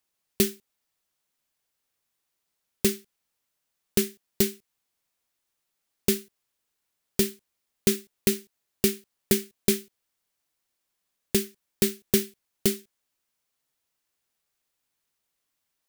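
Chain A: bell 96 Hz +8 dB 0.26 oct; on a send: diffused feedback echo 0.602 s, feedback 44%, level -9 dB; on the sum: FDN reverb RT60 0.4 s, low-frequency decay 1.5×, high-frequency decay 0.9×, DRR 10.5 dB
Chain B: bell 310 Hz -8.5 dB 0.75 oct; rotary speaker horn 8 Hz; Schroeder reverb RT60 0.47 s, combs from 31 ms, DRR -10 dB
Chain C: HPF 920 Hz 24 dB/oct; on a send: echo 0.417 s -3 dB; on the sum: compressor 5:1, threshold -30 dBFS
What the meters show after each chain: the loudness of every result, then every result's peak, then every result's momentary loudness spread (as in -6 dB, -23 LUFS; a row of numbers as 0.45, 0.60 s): -29.0, -21.0, -36.0 LUFS; -6.0, -1.5, -10.5 dBFS; 18, 13, 4 LU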